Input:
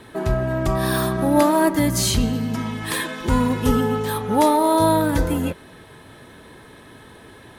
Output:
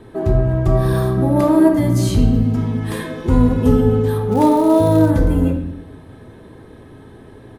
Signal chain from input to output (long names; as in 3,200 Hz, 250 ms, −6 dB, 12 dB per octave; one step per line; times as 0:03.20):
tilt shelving filter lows +7 dB, about 910 Hz
downsampling to 32,000 Hz
on a send at −3.5 dB: convolution reverb RT60 0.75 s, pre-delay 3 ms
0:04.31–0:05.09: on the sum: surface crackle 420 per second −24 dBFS
level −2.5 dB